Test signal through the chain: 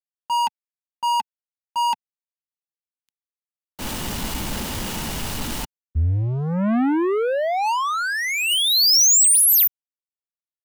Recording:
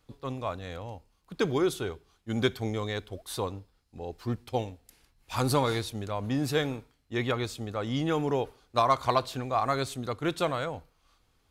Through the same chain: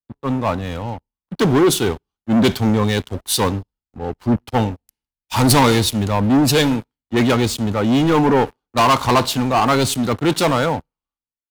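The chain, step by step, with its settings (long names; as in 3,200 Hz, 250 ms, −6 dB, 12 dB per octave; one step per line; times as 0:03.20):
hollow resonant body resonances 220/880/2,900 Hz, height 8 dB, ringing for 25 ms
leveller curve on the samples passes 5
multiband upward and downward expander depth 100%
level −2 dB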